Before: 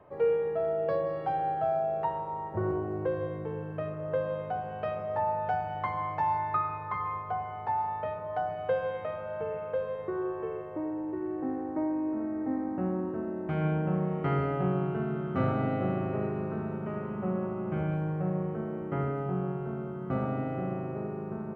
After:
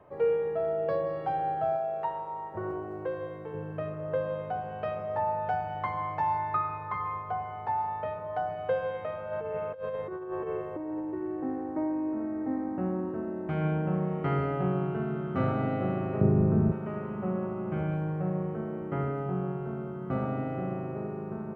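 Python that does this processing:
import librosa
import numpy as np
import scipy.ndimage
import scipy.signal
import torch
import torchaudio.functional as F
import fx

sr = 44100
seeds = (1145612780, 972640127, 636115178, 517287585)

y = fx.low_shelf(x, sr, hz=330.0, db=-9.5, at=(1.76, 3.54))
y = fx.over_compress(y, sr, threshold_db=-35.0, ratio=-0.5, at=(9.31, 10.99), fade=0.02)
y = fx.tilt_eq(y, sr, slope=-4.5, at=(16.21, 16.72))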